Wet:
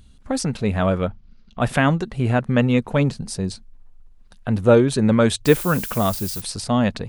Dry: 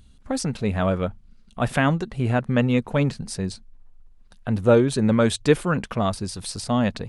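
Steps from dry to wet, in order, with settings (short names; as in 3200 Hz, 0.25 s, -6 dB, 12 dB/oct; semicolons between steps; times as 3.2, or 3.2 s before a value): 1.07–1.61 steep low-pass 6000 Hz; 3.01–3.5 dynamic EQ 1900 Hz, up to -6 dB, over -49 dBFS, Q 1.2; 5.45–6.4 added noise violet -34 dBFS; gain +2.5 dB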